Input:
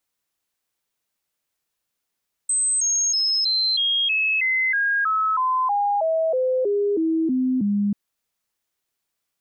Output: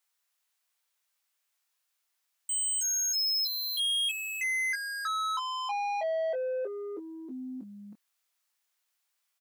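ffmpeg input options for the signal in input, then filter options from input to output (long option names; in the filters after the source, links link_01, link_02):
-f lavfi -i "aevalsrc='0.126*clip(min(mod(t,0.32),0.32-mod(t,0.32))/0.005,0,1)*sin(2*PI*8210*pow(2,-floor(t/0.32)/3)*mod(t,0.32))':duration=5.44:sample_rate=44100"
-filter_complex "[0:a]highpass=820,asoftclip=type=tanh:threshold=-30.5dB,asplit=2[link_01][link_02];[link_02]adelay=23,volume=-6.5dB[link_03];[link_01][link_03]amix=inputs=2:normalize=0"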